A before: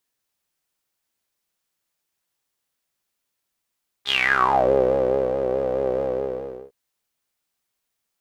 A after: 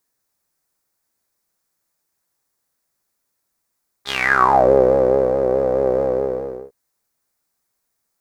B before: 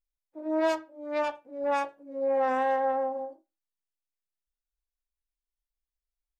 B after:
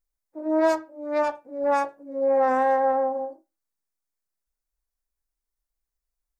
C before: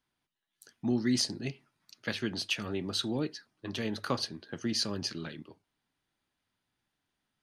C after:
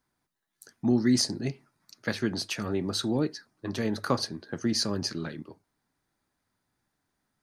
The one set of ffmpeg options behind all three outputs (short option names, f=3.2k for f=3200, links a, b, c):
-af "equalizer=f=3k:w=1.9:g=-11.5,volume=5.5dB"